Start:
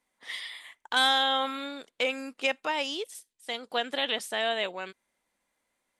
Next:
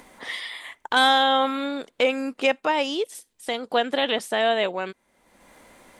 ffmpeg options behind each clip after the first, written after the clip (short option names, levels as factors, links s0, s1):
-filter_complex "[0:a]asplit=2[s0][s1];[s1]acompressor=mode=upward:threshold=0.0355:ratio=2.5,volume=0.944[s2];[s0][s2]amix=inputs=2:normalize=0,tiltshelf=f=1400:g=4.5"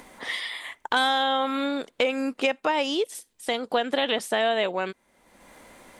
-af "acompressor=threshold=0.0891:ratio=6,volume=1.19"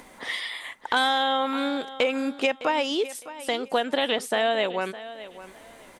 -af "aecho=1:1:609|1218:0.168|0.0403"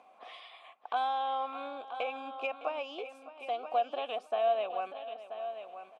-filter_complex "[0:a]asplit=3[s0][s1][s2];[s0]bandpass=f=730:t=q:w=8,volume=1[s3];[s1]bandpass=f=1090:t=q:w=8,volume=0.501[s4];[s2]bandpass=f=2440:t=q:w=8,volume=0.355[s5];[s3][s4][s5]amix=inputs=3:normalize=0,aecho=1:1:982:0.299"